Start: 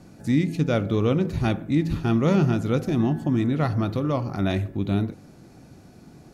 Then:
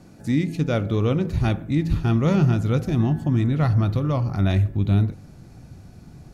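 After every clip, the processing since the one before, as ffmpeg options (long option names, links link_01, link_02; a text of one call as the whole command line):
ffmpeg -i in.wav -af "asubboost=boost=4:cutoff=140" out.wav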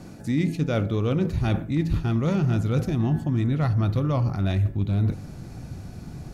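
ffmpeg -i in.wav -af "asoftclip=type=hard:threshold=-11.5dB,areverse,acompressor=threshold=-26dB:ratio=6,areverse,volume=6dB" out.wav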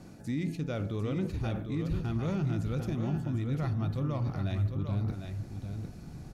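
ffmpeg -i in.wav -af "alimiter=limit=-17dB:level=0:latency=1:release=22,aecho=1:1:750:0.447,volume=-7.5dB" out.wav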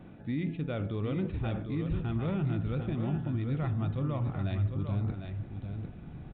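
ffmpeg -i in.wav -af "aresample=8000,aresample=44100" out.wav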